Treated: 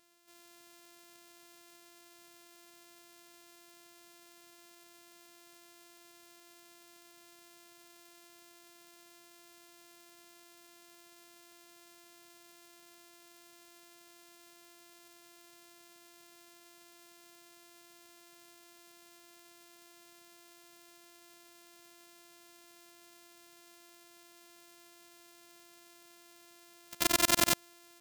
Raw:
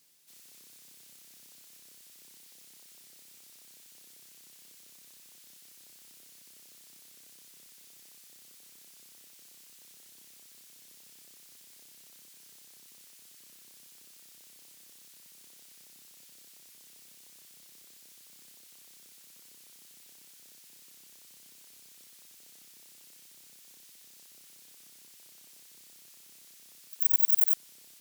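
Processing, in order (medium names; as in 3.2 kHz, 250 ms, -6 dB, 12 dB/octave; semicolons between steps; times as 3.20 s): sorted samples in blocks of 128 samples; treble shelf 2.5 kHz +10.5 dB; trim -8 dB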